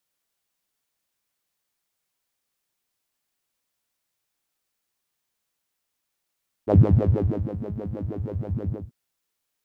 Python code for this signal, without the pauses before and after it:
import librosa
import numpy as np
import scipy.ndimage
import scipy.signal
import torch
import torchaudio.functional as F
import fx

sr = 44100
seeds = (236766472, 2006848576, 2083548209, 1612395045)

y = fx.sub_patch_wobble(sr, seeds[0], note=44, wave='saw', wave2='saw', interval_st=0, level2_db=-9.0, sub_db=-15.0, noise_db=-30.0, kind='bandpass', cutoff_hz=170.0, q=4.4, env_oct=0.5, env_decay_s=0.27, env_sustain_pct=40, attack_ms=39.0, decay_s=0.82, sustain_db=-13, release_s=0.23, note_s=2.01, lfo_hz=6.3, wobble_oct=1.4)